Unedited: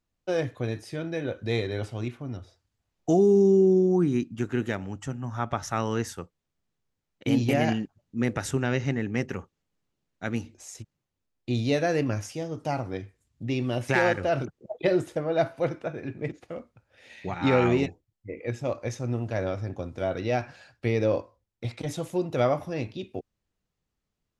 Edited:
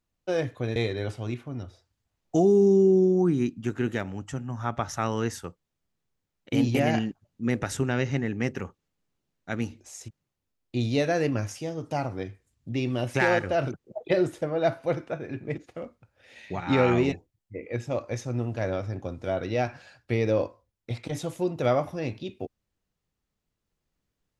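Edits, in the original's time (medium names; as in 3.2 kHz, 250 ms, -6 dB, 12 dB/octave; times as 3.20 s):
0.76–1.50 s: delete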